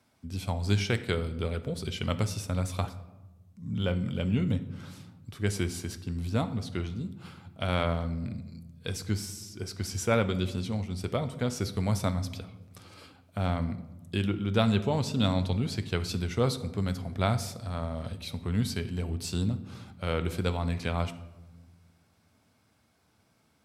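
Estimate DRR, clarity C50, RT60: 10.5 dB, 13.5 dB, 1.1 s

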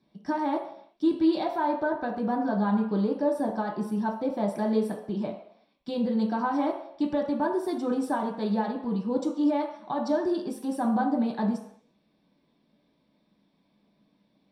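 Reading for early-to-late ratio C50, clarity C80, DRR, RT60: 6.5 dB, 9.5 dB, -1.0 dB, not exponential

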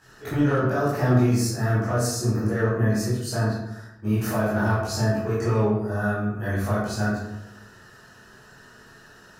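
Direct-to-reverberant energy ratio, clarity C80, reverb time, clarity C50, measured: -10.5 dB, 4.0 dB, 0.90 s, 0.5 dB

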